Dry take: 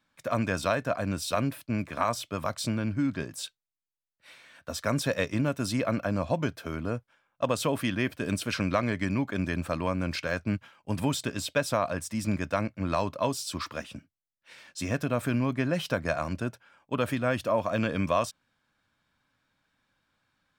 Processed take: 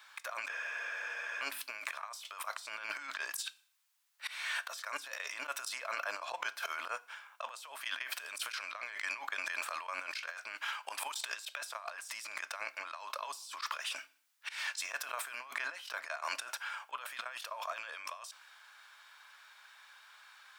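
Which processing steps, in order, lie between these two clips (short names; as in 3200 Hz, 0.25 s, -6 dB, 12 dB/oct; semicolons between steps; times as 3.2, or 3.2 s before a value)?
HPF 890 Hz 24 dB/oct; auto swell 0.229 s; limiter -30 dBFS, peak gain reduction 10.5 dB; negative-ratio compressor -54 dBFS, ratio -1; FDN reverb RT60 0.58 s, low-frequency decay 1×, high-frequency decay 0.9×, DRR 16.5 dB; spectral freeze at 0.52, 0.88 s; gain +11.5 dB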